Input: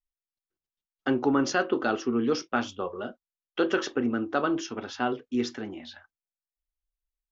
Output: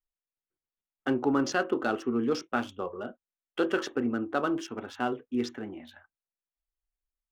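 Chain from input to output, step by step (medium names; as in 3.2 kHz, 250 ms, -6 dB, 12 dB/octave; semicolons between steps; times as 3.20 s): local Wiener filter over 9 samples; trim -2 dB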